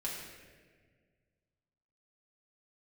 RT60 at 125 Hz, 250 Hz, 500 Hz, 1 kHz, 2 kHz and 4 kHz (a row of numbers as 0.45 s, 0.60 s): 2.5 s, 2.1 s, 2.0 s, 1.3 s, 1.6 s, 1.1 s